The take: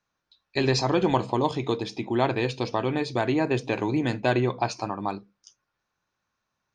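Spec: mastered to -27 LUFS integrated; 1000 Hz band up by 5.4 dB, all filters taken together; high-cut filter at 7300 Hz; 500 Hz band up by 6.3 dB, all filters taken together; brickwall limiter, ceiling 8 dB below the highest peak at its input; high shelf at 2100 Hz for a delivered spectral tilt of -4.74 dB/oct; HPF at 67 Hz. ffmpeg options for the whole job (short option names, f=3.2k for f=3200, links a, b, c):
-af "highpass=67,lowpass=7.3k,equalizer=f=500:t=o:g=7.5,equalizer=f=1k:t=o:g=5.5,highshelf=f=2.1k:g=-8,volume=-2.5dB,alimiter=limit=-14dB:level=0:latency=1"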